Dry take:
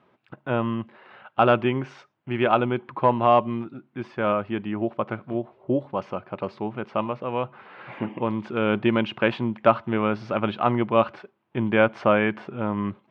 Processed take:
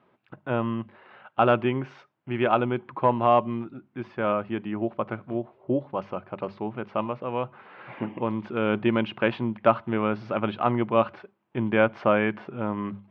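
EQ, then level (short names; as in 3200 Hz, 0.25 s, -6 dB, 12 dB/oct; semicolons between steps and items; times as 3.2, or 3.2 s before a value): air absorption 110 m; notches 50/100/150/200 Hz; -1.5 dB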